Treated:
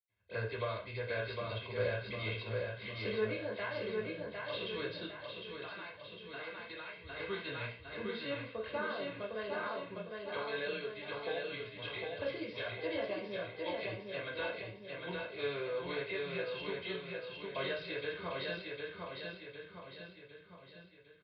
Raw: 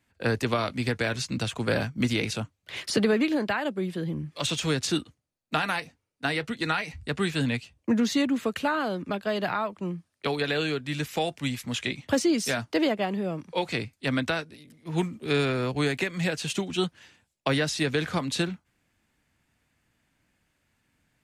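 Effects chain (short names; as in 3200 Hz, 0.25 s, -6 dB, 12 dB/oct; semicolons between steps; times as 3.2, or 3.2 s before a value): feedback echo 0.756 s, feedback 48%, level -3.5 dB; dynamic EQ 160 Hz, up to -7 dB, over -41 dBFS, Q 1.3; 4.99–7.11 compressor, threshold -29 dBFS, peak gain reduction 8 dB; comb 1.9 ms, depth 69%; reverb, pre-delay 76 ms; downsampling 11025 Hz; HPF 57 Hz; gain +11.5 dB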